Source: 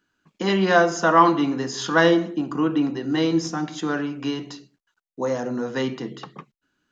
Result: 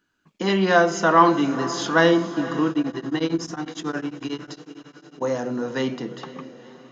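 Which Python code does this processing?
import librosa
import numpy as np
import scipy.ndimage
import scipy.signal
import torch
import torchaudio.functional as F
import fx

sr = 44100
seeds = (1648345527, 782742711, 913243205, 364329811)

y = fx.echo_diffused(x, sr, ms=483, feedback_pct=58, wet_db=-15.0)
y = fx.tremolo_abs(y, sr, hz=11.0, at=(2.7, 5.22))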